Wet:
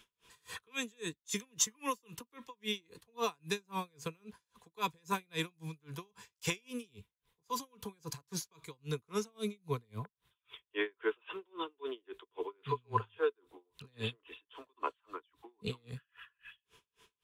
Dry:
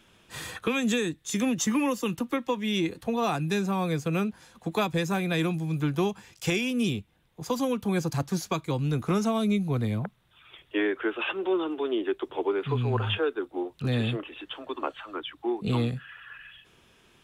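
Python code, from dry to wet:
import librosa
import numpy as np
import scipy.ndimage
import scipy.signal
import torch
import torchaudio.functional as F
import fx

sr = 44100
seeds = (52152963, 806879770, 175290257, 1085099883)

y = fx.tone_stack(x, sr, knobs='5-5-5')
y = fx.small_body(y, sr, hz=(440.0, 1000.0), ring_ms=50, db=15)
y = y * 10.0 ** (-38 * (0.5 - 0.5 * np.cos(2.0 * np.pi * 3.7 * np.arange(len(y)) / sr)) / 20.0)
y = F.gain(torch.from_numpy(y), 7.0).numpy()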